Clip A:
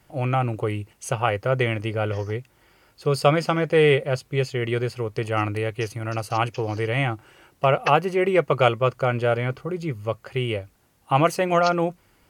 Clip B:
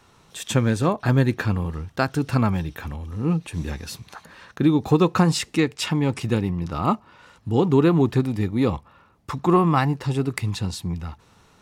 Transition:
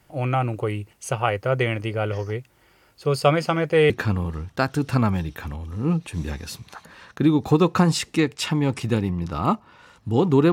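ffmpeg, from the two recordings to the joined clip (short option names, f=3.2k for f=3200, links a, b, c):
-filter_complex "[0:a]apad=whole_dur=10.52,atrim=end=10.52,atrim=end=3.902[a];[1:a]atrim=start=1.298:end=7.92[b];[a][b]acrossfade=d=0.004:c1=hsin:c2=hsin"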